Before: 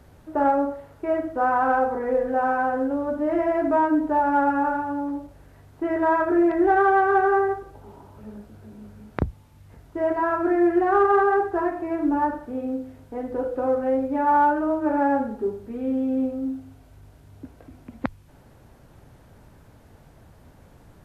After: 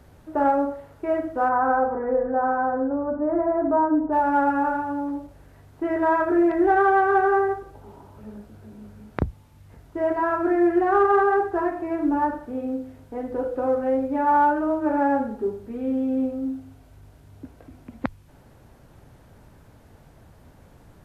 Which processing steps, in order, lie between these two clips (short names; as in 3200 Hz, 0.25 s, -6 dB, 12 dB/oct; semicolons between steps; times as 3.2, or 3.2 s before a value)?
1.48–4.11 LPF 1800 Hz -> 1300 Hz 24 dB/oct